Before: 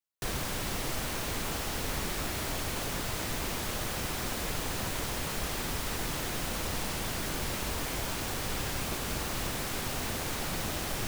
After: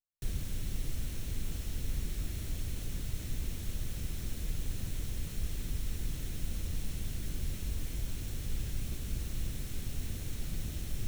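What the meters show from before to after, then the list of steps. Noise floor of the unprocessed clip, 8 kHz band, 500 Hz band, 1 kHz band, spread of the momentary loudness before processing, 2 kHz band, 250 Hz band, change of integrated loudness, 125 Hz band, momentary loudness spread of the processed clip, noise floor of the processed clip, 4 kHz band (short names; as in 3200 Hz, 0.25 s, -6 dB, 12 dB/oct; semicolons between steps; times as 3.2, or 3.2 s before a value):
-35 dBFS, -10.0 dB, -14.5 dB, -21.5 dB, 0 LU, -15.5 dB, -7.0 dB, -6.5 dB, 0.0 dB, 2 LU, -41 dBFS, -12.5 dB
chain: passive tone stack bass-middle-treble 10-0-1; notch 4800 Hz, Q 12; gain +10.5 dB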